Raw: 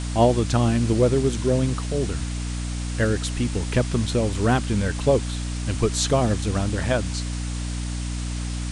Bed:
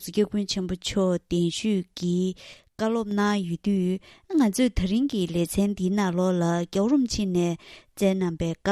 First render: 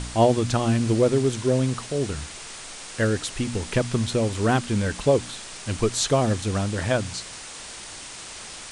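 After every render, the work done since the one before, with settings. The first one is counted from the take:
hum removal 60 Hz, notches 5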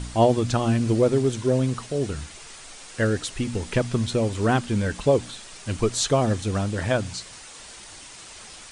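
broadband denoise 6 dB, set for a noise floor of −39 dBFS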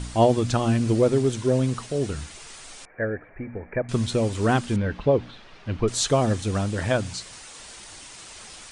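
0:02.85–0:03.89: Chebyshev low-pass with heavy ripple 2,400 Hz, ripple 9 dB
0:04.76–0:05.88: high-frequency loss of the air 300 metres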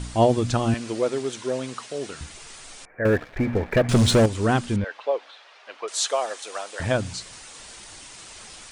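0:00.74–0:02.21: meter weighting curve A
0:03.05–0:04.26: leveller curve on the samples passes 3
0:04.84–0:06.80: high-pass filter 550 Hz 24 dB per octave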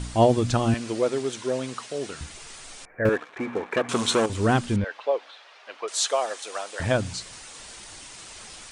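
0:03.09–0:04.30: loudspeaker in its box 350–9,900 Hz, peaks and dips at 600 Hz −8 dB, 1,100 Hz +6 dB, 1,900 Hz −4 dB, 4,800 Hz −6 dB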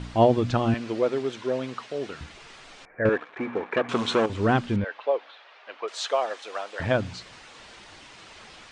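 low-pass filter 3,500 Hz 12 dB per octave
low-shelf EQ 62 Hz −9 dB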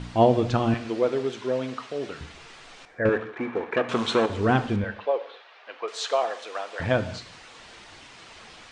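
reverb whose tail is shaped and stops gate 260 ms falling, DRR 10 dB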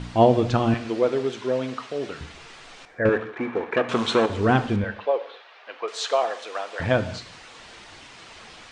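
level +2 dB

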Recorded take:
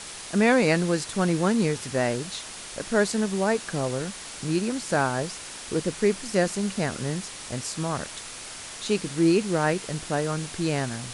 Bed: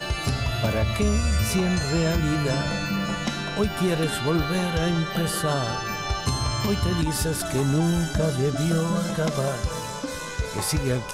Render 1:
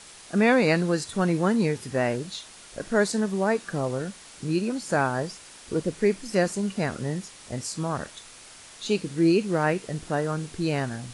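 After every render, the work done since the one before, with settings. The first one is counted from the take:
noise reduction from a noise print 8 dB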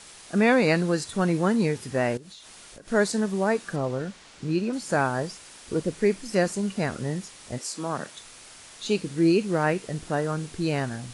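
0:02.17–0:02.88: downward compressor 8 to 1, threshold −42 dBFS
0:03.76–0:04.73: high-frequency loss of the air 72 metres
0:07.57–0:08.16: high-pass filter 360 Hz → 98 Hz 24 dB per octave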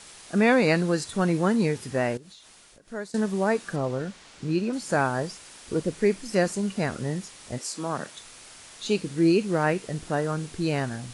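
0:01.90–0:03.14: fade out, to −17.5 dB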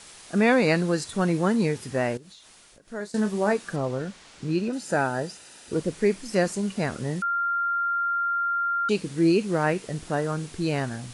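0:02.98–0:03.53: double-tracking delay 24 ms −8 dB
0:04.68–0:05.73: notch comb filter 1,100 Hz
0:07.22–0:08.89: beep over 1,390 Hz −22.5 dBFS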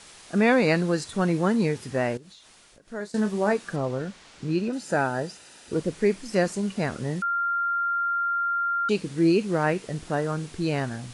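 high-shelf EQ 9,400 Hz −6.5 dB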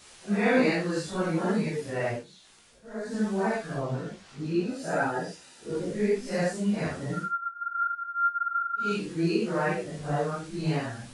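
random phases in long frames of 200 ms
multi-voice chorus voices 2, 0.58 Hz, delay 15 ms, depth 4.9 ms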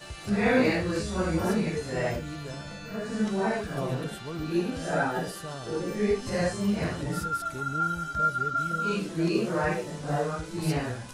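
mix in bed −14 dB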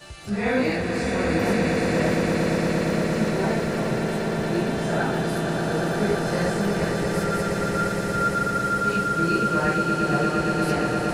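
echo that builds up and dies away 116 ms, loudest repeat 8, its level −7 dB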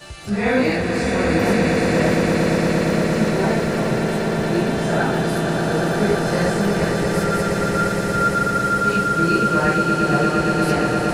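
level +4.5 dB

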